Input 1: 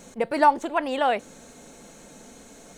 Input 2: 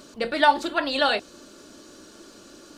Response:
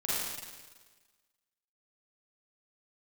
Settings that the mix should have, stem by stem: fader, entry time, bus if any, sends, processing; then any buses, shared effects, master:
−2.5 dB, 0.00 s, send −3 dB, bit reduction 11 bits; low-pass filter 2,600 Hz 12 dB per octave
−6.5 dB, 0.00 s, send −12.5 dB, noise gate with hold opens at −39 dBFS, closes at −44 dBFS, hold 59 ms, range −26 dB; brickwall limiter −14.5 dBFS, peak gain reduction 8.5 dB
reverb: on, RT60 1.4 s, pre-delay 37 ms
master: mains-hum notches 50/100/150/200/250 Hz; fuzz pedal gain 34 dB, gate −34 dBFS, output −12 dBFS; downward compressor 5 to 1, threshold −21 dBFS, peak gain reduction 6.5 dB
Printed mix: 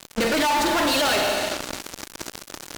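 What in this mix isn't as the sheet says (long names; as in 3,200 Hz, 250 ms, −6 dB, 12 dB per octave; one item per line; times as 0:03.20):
stem 1 −2.5 dB → −9.0 dB
stem 2 −6.5 dB → +5.0 dB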